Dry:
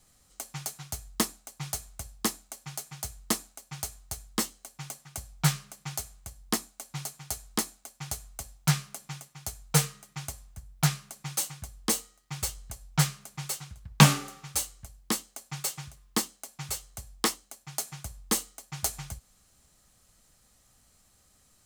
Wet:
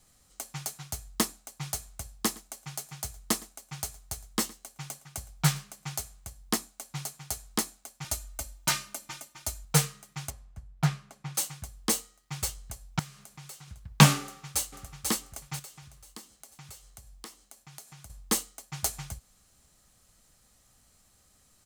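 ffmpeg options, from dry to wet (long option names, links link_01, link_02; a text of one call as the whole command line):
ffmpeg -i in.wav -filter_complex "[0:a]asettb=1/sr,asplit=3[link_01][link_02][link_03];[link_01]atrim=end=2.124[link_04];[link_02]atrim=start=2.12:end=6,asetpts=PTS-STARTPTS,afade=type=in:duration=0.004:curve=qsin,afade=type=out:start_time=3.876:duration=0.004:curve=qsin,aecho=1:1:113:0.0794,atrim=end_sample=171108[link_05];[link_03]atrim=start=5.996[link_06];[link_04][link_05]acrossfade=duration=0.004:curve1=hsin:curve2=qsin[link_07];[link_07][link_06]acrossfade=duration=0.004:curve1=qsin:curve2=hsin,asettb=1/sr,asplit=3[link_08][link_09][link_10];[link_08]atrim=end=8.044[link_11];[link_09]atrim=start=8.04:end=9.65,asetpts=PTS-STARTPTS,afade=type=in:duration=0.004:curve=qsin,afade=type=out:start_time=1.606:duration=0.004:curve=qsin,aecho=1:1:3.3:0.95,atrim=end_sample=71001[link_12];[link_10]atrim=start=9.646[link_13];[link_11][link_12]acrossfade=duration=0.004:curve1=hsin:curve2=qsin[link_14];[link_14][link_13]acrossfade=duration=0.004:curve1=qsin:curve2=hsin,asettb=1/sr,asplit=3[link_15][link_16][link_17];[link_15]atrim=end=10.304[link_18];[link_16]atrim=start=10.3:end=11.35,asetpts=PTS-STARTPTS,afade=type=in:duration=0.004:curve=qsin,afade=type=out:start_time=1.046:duration=0.004:curve=qsin,lowpass=frequency=1900:poles=1[link_19];[link_17]atrim=start=11.346[link_20];[link_18][link_19]acrossfade=duration=0.004:curve1=hsin:curve2=qsin[link_21];[link_21][link_20]acrossfade=duration=0.004:curve1=qsin:curve2=hsin,asettb=1/sr,asplit=3[link_22][link_23][link_24];[link_22]atrim=end=12.994[link_25];[link_23]atrim=start=12.99:end=13.68,asetpts=PTS-STARTPTS,afade=type=in:duration=0.004:curve=qsin,afade=type=out:start_time=0.686:duration=0.004:curve=qsin,acompressor=threshold=-47dB:ratio=2.5:attack=3.2:release=140:knee=1:detection=peak[link_26];[link_24]atrim=start=13.676[link_27];[link_25][link_26]acrossfade=duration=0.004:curve1=hsin:curve2=qsin[link_28];[link_28][link_27]acrossfade=duration=0.004:curve1=qsin:curve2=hsin,asplit=2[link_29][link_30];[link_30]afade=type=in:start_time=14.23:duration=0.01,afade=type=out:start_time=14.98:duration=0.01,aecho=0:1:490|980|1470|1960:0.630957|0.220835|0.0772923|0.0270523[link_31];[link_29][link_31]amix=inputs=2:normalize=0,asettb=1/sr,asplit=3[link_32][link_33][link_34];[link_32]atrim=end=15.594[link_35];[link_33]atrim=start=15.59:end=18.1,asetpts=PTS-STARTPTS,afade=type=in:duration=0.004:curve=qsin,afade=type=out:start_time=2.506:duration=0.004:curve=qsin,acompressor=threshold=-48dB:ratio=3:attack=3.2:release=140:knee=1:detection=peak[link_36];[link_34]atrim=start=18.096[link_37];[link_35][link_36]acrossfade=duration=0.004:curve1=hsin:curve2=qsin[link_38];[link_38][link_37]acrossfade=duration=0.004:curve1=qsin:curve2=hsin" out.wav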